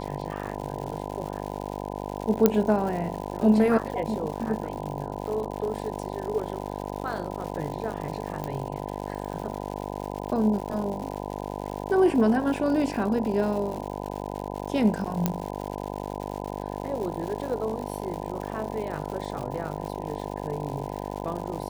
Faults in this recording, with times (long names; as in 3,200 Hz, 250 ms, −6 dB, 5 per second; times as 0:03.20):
mains buzz 50 Hz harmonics 20 −34 dBFS
surface crackle 200 per second −34 dBFS
0:02.46: click −5 dBFS
0:08.44: click −18 dBFS
0:15.26: click −9 dBFS